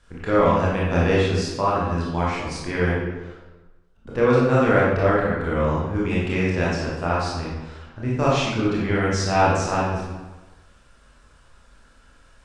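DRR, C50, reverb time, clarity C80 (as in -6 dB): -6.5 dB, -0.5 dB, 1.2 s, 2.5 dB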